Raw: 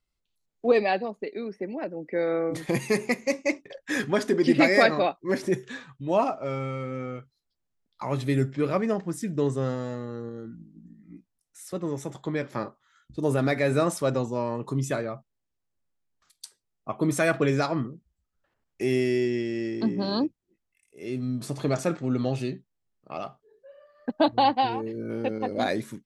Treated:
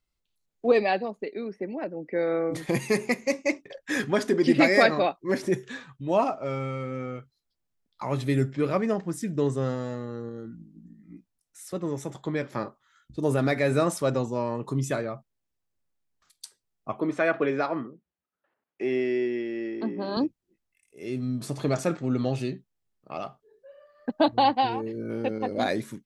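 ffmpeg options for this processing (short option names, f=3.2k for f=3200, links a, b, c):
-filter_complex "[0:a]asettb=1/sr,asplit=3[a][b][c];[a]atrim=end=1.274[d];[b]atrim=start=1.27:end=2.32,asetpts=PTS-STARTPTS,afade=t=in:d=0.004:c=qsin,afade=t=out:st=1.046:d=0.004:c=qsin,highshelf=f=5.9k:g=-6.5[e];[c]atrim=start=2.316[f];[d][e]acrossfade=d=0.004:c1=hsin:c2=qsin[g];[g][f]acrossfade=d=0.004:c1=qsin:c2=hsin,asettb=1/sr,asplit=3[h][i][j];[h]atrim=end=17.004[k];[i]atrim=start=17:end=20.17,asetpts=PTS-STARTPTS,afade=t=in:d=0.004:c=qsin,afade=t=out:st=3.166:d=0.004:c=qsin,highpass=280,lowpass=2.6k[l];[j]atrim=start=20.166[m];[k][l]acrossfade=d=0.004:c1=hsin:c2=qsin[n];[n][m]acrossfade=d=0.004:c1=qsin:c2=hsin"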